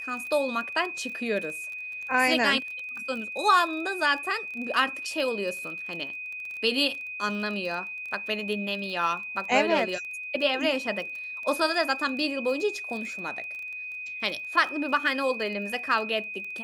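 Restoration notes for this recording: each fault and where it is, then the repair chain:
surface crackle 22 per second −34 dBFS
whistle 2,500 Hz −34 dBFS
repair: click removal
notch filter 2,500 Hz, Q 30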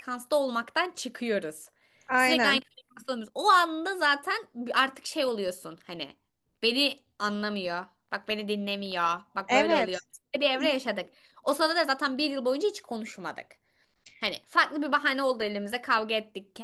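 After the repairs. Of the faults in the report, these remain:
none of them is left

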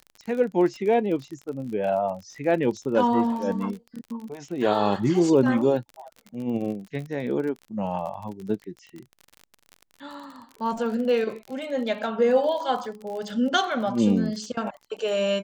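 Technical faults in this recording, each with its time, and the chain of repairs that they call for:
surface crackle 35 per second −33 dBFS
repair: click removal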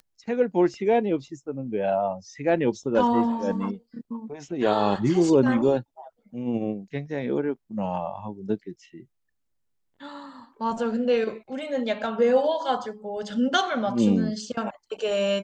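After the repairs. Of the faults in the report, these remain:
none of them is left

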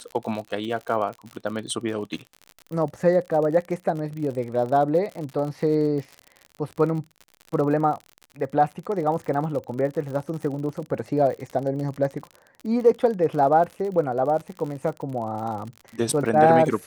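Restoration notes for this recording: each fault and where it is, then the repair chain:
surface crackle 56 per second −31 dBFS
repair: click removal

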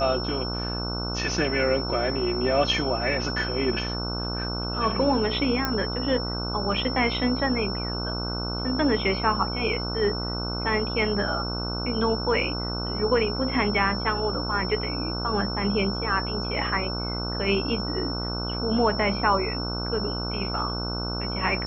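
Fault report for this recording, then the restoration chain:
mains buzz 60 Hz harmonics 25 −31 dBFS
whistle 5,400 Hz −32 dBFS
0:05.65: click −10 dBFS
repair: click removal
notch filter 5,400 Hz, Q 30
hum removal 60 Hz, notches 25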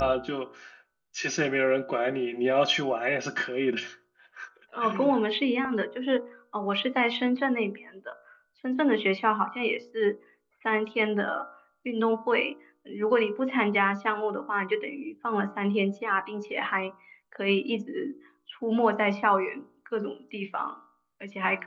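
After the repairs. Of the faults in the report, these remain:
none of them is left

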